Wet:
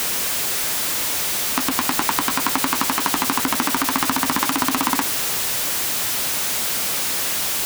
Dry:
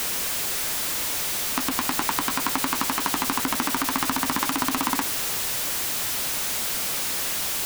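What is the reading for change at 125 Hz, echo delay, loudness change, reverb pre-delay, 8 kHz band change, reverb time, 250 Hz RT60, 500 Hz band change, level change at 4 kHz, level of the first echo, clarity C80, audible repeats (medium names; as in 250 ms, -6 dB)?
+3.5 dB, no echo, +4.5 dB, no reverb, +4.5 dB, no reverb, no reverb, +4.5 dB, +4.5 dB, no echo, no reverb, no echo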